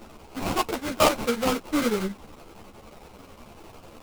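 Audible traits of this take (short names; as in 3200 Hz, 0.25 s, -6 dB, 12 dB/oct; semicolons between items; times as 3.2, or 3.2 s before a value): a quantiser's noise floor 8-bit, dither triangular; chopped level 11 Hz, depth 60%, duty 80%; aliases and images of a low sample rate 1800 Hz, jitter 20%; a shimmering, thickened sound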